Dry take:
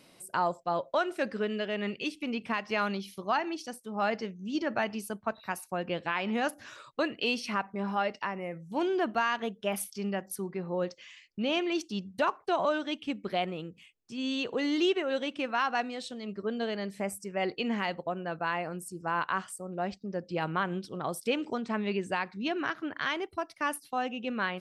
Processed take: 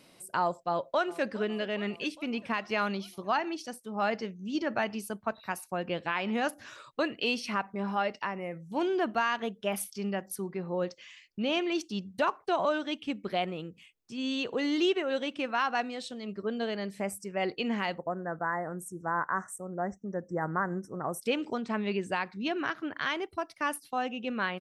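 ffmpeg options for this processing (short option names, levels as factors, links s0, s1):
-filter_complex "[0:a]asplit=2[s0][s1];[s1]afade=t=in:st=0.65:d=0.01,afade=t=out:st=1.27:d=0.01,aecho=0:1:410|820|1230|1640|2050|2460:0.125893|0.0818302|0.0531896|0.0345732|0.0224726|0.0146072[s2];[s0][s2]amix=inputs=2:normalize=0,asettb=1/sr,asplit=3[s3][s4][s5];[s3]atrim=end=17.984[s6];[s4]atrim=start=17.98:end=21.22,asetpts=PTS-STARTPTS,afade=t=in:d=0.004:c=qsin,afade=t=out:st=3.236:d=0.004:c=qsin,asuperstop=centerf=3400:order=20:qfactor=0.93[s7];[s5]atrim=start=21.216[s8];[s6][s7]acrossfade=d=0.004:c1=hsin:c2=qsin[s9];[s9][s8]acrossfade=d=0.004:c1=qsin:c2=hsin"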